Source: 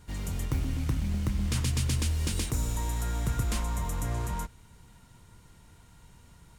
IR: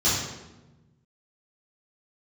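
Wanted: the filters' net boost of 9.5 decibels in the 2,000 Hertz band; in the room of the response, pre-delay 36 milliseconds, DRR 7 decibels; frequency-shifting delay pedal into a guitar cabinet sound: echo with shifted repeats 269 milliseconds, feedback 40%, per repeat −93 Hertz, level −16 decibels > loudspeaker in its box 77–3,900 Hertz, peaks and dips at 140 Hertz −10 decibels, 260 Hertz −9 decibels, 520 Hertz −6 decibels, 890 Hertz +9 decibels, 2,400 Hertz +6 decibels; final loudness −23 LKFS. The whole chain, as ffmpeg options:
-filter_complex "[0:a]equalizer=frequency=2000:width_type=o:gain=8,asplit=2[link_01][link_02];[1:a]atrim=start_sample=2205,adelay=36[link_03];[link_02][link_03]afir=irnorm=-1:irlink=0,volume=-21.5dB[link_04];[link_01][link_04]amix=inputs=2:normalize=0,asplit=5[link_05][link_06][link_07][link_08][link_09];[link_06]adelay=269,afreqshift=-93,volume=-16dB[link_10];[link_07]adelay=538,afreqshift=-186,volume=-24dB[link_11];[link_08]adelay=807,afreqshift=-279,volume=-31.9dB[link_12];[link_09]adelay=1076,afreqshift=-372,volume=-39.9dB[link_13];[link_05][link_10][link_11][link_12][link_13]amix=inputs=5:normalize=0,highpass=77,equalizer=frequency=140:width_type=q:width=4:gain=-10,equalizer=frequency=260:width_type=q:width=4:gain=-9,equalizer=frequency=520:width_type=q:width=4:gain=-6,equalizer=frequency=890:width_type=q:width=4:gain=9,equalizer=frequency=2400:width_type=q:width=4:gain=6,lowpass=frequency=3900:width=0.5412,lowpass=frequency=3900:width=1.3066,volume=6.5dB"

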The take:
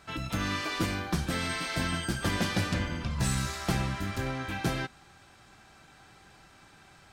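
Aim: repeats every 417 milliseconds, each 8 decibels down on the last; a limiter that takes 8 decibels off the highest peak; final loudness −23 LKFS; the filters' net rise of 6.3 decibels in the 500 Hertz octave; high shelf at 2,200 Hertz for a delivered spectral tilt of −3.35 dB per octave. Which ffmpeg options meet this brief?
ffmpeg -i in.wav -af "equalizer=frequency=500:width_type=o:gain=7.5,highshelf=frequency=2200:gain=8.5,alimiter=limit=-20dB:level=0:latency=1,aecho=1:1:417|834|1251|1668|2085:0.398|0.159|0.0637|0.0255|0.0102,volume=6.5dB" out.wav

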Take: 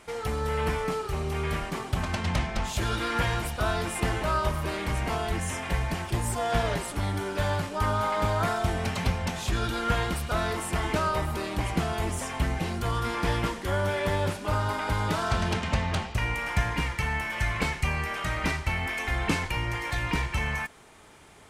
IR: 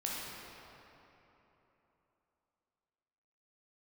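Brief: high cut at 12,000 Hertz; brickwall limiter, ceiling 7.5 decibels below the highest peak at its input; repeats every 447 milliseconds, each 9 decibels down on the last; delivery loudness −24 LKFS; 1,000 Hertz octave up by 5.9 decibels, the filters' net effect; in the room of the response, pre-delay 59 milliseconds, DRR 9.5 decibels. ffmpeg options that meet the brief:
-filter_complex "[0:a]lowpass=12000,equalizer=frequency=1000:width_type=o:gain=7.5,alimiter=limit=-17.5dB:level=0:latency=1,aecho=1:1:447|894|1341|1788:0.355|0.124|0.0435|0.0152,asplit=2[link_01][link_02];[1:a]atrim=start_sample=2205,adelay=59[link_03];[link_02][link_03]afir=irnorm=-1:irlink=0,volume=-13.5dB[link_04];[link_01][link_04]amix=inputs=2:normalize=0,volume=3dB"

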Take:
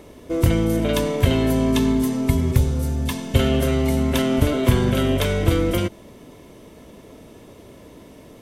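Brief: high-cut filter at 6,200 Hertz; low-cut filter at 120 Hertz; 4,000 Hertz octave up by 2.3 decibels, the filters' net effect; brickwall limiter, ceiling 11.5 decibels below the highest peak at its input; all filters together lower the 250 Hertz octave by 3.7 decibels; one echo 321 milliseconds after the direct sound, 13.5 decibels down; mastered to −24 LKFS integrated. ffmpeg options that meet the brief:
ffmpeg -i in.wav -af "highpass=120,lowpass=6200,equalizer=frequency=250:width_type=o:gain=-4,equalizer=frequency=4000:width_type=o:gain=3.5,alimiter=limit=-18dB:level=0:latency=1,aecho=1:1:321:0.211,volume=3dB" out.wav

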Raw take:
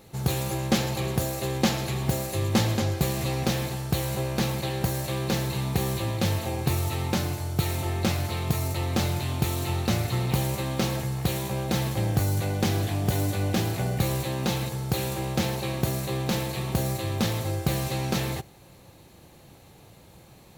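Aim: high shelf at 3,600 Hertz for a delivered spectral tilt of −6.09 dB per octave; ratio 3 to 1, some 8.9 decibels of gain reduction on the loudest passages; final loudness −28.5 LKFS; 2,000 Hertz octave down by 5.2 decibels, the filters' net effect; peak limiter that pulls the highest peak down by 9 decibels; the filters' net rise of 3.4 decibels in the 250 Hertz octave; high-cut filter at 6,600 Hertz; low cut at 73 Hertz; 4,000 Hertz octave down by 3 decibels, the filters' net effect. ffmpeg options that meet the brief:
ffmpeg -i in.wav -af "highpass=73,lowpass=6600,equalizer=frequency=250:width_type=o:gain=5,equalizer=frequency=2000:width_type=o:gain=-7,highshelf=frequency=3600:gain=6,equalizer=frequency=4000:width_type=o:gain=-5,acompressor=threshold=-30dB:ratio=3,volume=5.5dB,alimiter=limit=-19dB:level=0:latency=1" out.wav

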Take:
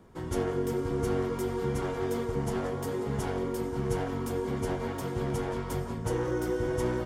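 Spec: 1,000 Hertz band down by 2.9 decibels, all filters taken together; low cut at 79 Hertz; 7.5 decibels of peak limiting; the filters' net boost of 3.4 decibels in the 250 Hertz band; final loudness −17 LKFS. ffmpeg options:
ffmpeg -i in.wav -af "highpass=79,equalizer=frequency=250:width_type=o:gain=5,equalizer=frequency=1000:width_type=o:gain=-4,volume=15.5dB,alimiter=limit=-8dB:level=0:latency=1" out.wav

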